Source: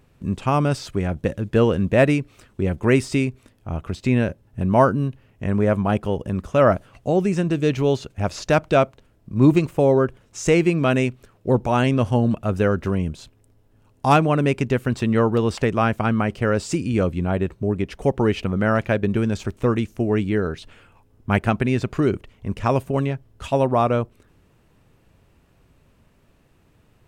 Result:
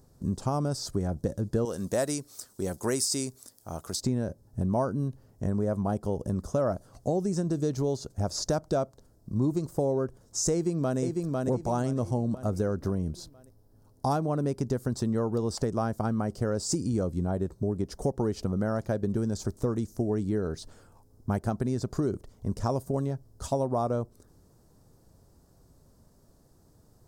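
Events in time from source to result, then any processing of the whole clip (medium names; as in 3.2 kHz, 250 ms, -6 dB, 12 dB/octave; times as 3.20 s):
1.65–4.01 s: tilt EQ +3.5 dB/octave
10.52–10.99 s: echo throw 500 ms, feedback 45%, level -6.5 dB
12.79–14.65 s: peaking EQ 7.4 kHz -6 dB 0.59 oct
whole clip: FFT filter 760 Hz 0 dB, 1.6 kHz -8 dB, 2.6 kHz -21 dB, 4.9 kHz +6 dB; compression 4:1, threshold -23 dBFS; trim -2 dB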